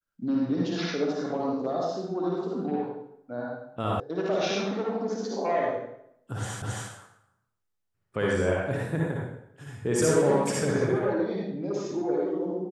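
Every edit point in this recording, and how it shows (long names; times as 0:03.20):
0:04.00: cut off before it has died away
0:06.62: the same again, the last 0.27 s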